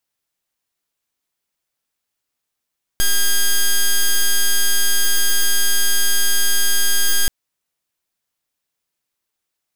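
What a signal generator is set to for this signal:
pulse wave 1,620 Hz, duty 6% −13.5 dBFS 4.28 s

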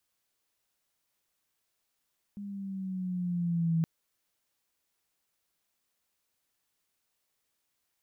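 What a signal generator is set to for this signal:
pitch glide with a swell sine, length 1.47 s, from 204 Hz, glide −4 semitones, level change +14 dB, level −23.5 dB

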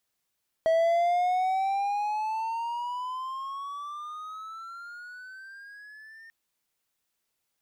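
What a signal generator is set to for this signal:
pitch glide with a swell triangle, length 5.64 s, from 646 Hz, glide +18 semitones, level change −27 dB, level −17.5 dB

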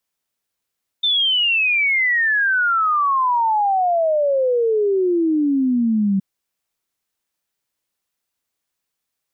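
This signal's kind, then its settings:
exponential sine sweep 3,600 Hz → 190 Hz 5.17 s −14.5 dBFS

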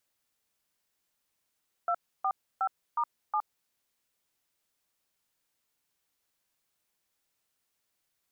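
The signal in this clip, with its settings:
touch tones "245*7", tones 66 ms, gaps 298 ms, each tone −28 dBFS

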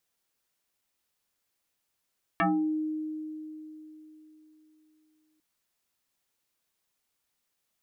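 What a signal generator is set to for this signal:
two-operator FM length 3.00 s, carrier 310 Hz, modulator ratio 1.59, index 4.4, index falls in 0.40 s exponential, decay 3.66 s, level −21 dB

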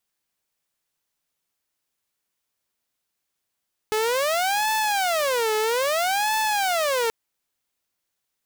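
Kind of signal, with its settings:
siren wail 430–873 Hz 0.61 per second saw −18 dBFS 3.18 s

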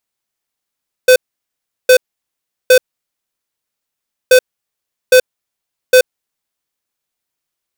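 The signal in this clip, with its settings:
beeps in groups square 508 Hz, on 0.08 s, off 0.73 s, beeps 3, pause 1.53 s, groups 2, −5.5 dBFS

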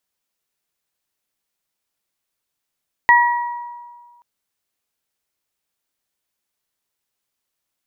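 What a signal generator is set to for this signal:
harmonic partials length 1.13 s, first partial 959 Hz, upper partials 0.5 dB, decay 1.67 s, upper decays 0.84 s, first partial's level −9 dB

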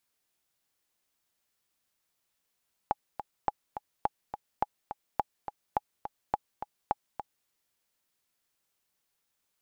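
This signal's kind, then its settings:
click track 210 BPM, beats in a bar 2, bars 8, 834 Hz, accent 10 dB −12.5 dBFS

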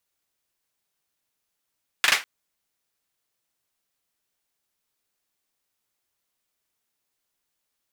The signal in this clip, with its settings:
synth clap length 0.20 s, bursts 3, apart 40 ms, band 1,900 Hz, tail 0.23 s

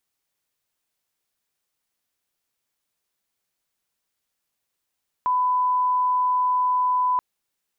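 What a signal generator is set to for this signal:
line-up tone −18 dBFS 1.93 s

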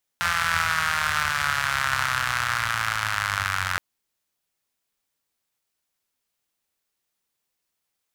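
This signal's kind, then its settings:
pulse-train model of a four-cylinder engine, changing speed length 3.57 s, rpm 5,200, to 2,700, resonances 89/1,400 Hz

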